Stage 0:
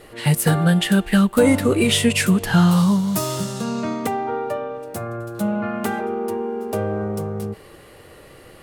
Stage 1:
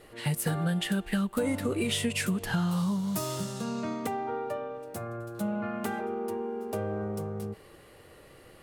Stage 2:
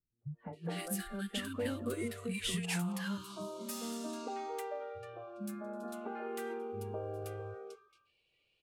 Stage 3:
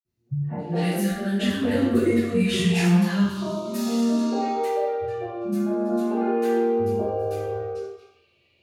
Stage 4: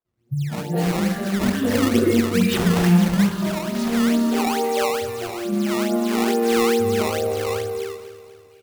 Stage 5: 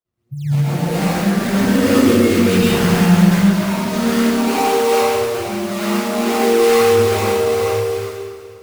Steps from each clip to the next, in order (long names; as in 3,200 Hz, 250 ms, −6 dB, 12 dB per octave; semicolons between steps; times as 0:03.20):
downward compressor 4 to 1, threshold −17 dBFS, peak gain reduction 6.5 dB; level −8.5 dB
three-band delay without the direct sound lows, mids, highs 210/530 ms, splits 240/1,200 Hz; noise reduction from a noise print of the clip's start 25 dB; low-pass that shuts in the quiet parts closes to 2,100 Hz, open at −31.5 dBFS; level −6 dB
convolution reverb RT60 0.80 s, pre-delay 46 ms; level +2.5 dB
sample-and-hold swept by an LFO 16×, swing 160% 2.3 Hz; repeating echo 245 ms, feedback 51%, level −14 dB; level +2.5 dB
dense smooth reverb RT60 1.5 s, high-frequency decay 0.75×, pre-delay 100 ms, DRR −9 dB; level −3.5 dB